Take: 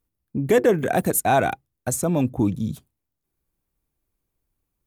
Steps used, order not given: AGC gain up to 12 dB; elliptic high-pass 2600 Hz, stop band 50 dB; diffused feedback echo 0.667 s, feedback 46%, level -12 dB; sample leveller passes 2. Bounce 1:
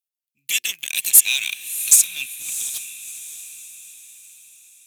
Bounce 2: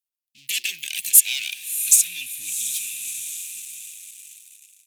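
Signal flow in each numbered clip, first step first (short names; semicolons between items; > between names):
elliptic high-pass > sample leveller > AGC > diffused feedback echo; diffused feedback echo > sample leveller > elliptic high-pass > AGC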